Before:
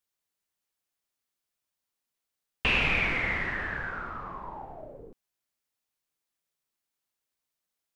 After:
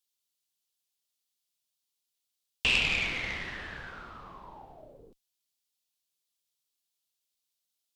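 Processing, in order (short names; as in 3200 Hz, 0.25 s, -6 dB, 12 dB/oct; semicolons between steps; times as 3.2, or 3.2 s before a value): added harmonics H 3 -18 dB, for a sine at -12.5 dBFS; resonant high shelf 2500 Hz +9.5 dB, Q 1.5; gain -3 dB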